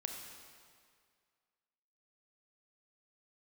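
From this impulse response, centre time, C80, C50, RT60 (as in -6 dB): 61 ms, 5.0 dB, 4.0 dB, 2.0 s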